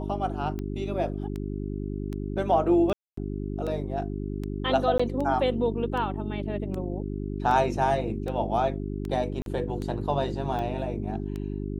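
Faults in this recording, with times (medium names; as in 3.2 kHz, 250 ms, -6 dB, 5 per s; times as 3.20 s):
hum 50 Hz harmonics 8 -32 dBFS
tick 78 rpm -22 dBFS
2.93–3.17 s: dropout 244 ms
4.98–5.00 s: dropout 15 ms
9.42–9.46 s: dropout 42 ms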